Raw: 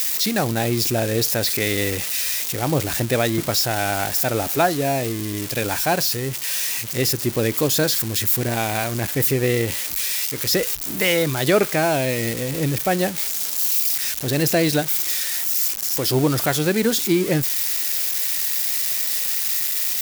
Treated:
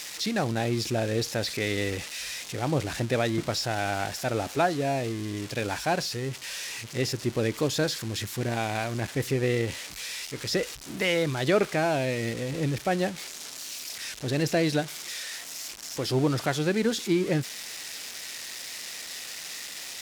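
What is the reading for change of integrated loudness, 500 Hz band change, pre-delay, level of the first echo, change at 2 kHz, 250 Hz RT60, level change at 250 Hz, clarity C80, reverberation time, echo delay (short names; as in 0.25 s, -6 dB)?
-9.0 dB, -5.5 dB, none, none, -6.0 dB, none, -5.5 dB, none, none, none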